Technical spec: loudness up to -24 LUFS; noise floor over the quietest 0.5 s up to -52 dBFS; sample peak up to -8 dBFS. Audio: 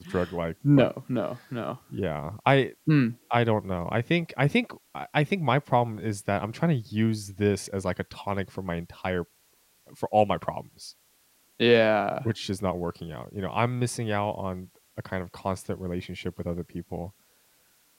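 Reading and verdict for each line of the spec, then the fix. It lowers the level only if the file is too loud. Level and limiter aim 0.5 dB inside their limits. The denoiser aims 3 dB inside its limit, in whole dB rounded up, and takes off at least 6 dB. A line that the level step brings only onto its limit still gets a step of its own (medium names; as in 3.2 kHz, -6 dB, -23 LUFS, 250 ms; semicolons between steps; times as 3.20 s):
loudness -27.5 LUFS: pass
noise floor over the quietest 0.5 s -64 dBFS: pass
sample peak -6.5 dBFS: fail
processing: peak limiter -8.5 dBFS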